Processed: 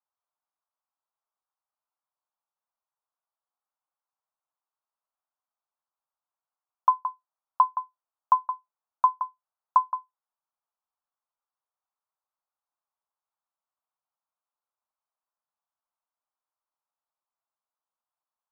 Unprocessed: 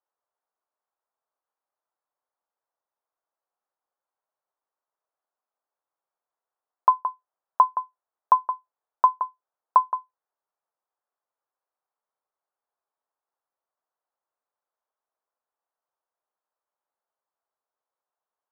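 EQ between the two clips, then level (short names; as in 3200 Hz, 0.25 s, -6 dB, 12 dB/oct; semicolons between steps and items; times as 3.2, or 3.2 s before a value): HPF 950 Hz 12 dB/oct; LPF 1400 Hz 24 dB/oct; 0.0 dB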